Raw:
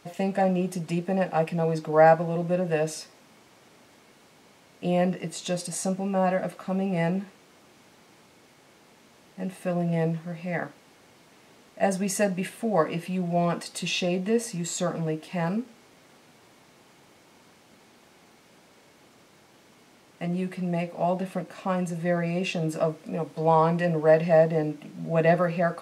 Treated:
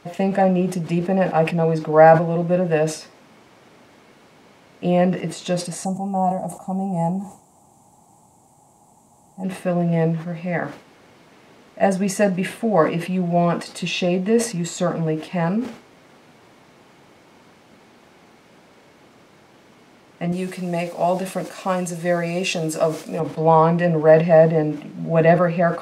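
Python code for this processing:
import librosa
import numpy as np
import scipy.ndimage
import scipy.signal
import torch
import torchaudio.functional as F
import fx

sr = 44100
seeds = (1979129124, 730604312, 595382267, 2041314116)

y = fx.curve_eq(x, sr, hz=(130.0, 520.0, 820.0, 1500.0, 2700.0, 5300.0, 7600.0, 13000.0), db=(0, -12, 5, -23, -19, -10, 11, 3), at=(5.84, 9.43), fade=0.02)
y = fx.bass_treble(y, sr, bass_db=-6, treble_db=14, at=(20.32, 23.2))
y = fx.high_shelf(y, sr, hz=4100.0, db=-9.0)
y = fx.sustainer(y, sr, db_per_s=130.0)
y = y * librosa.db_to_amplitude(6.5)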